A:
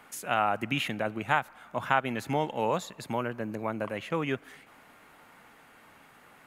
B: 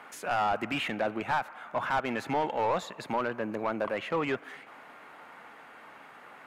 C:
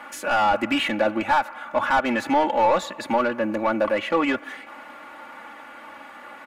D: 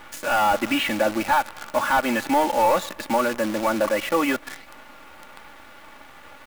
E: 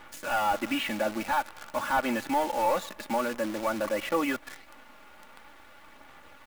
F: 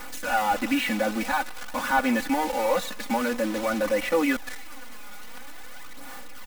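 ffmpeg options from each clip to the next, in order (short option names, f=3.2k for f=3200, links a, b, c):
-filter_complex "[0:a]asplit=2[a][b];[b]highpass=f=720:p=1,volume=25dB,asoftclip=type=tanh:threshold=-8dB[c];[a][c]amix=inputs=2:normalize=0,lowpass=f=1.3k:p=1,volume=-6dB,volume=-8.5dB"
-af "aecho=1:1:3.5:0.86,volume=6dB"
-af "acrusher=bits=6:dc=4:mix=0:aa=0.000001"
-af "aphaser=in_gain=1:out_gain=1:delay=4.9:decay=0.23:speed=0.49:type=sinusoidal,volume=-7.5dB"
-af "aeval=exprs='val(0)+0.5*0.0168*sgn(val(0))':c=same,aecho=1:1:4:0.86"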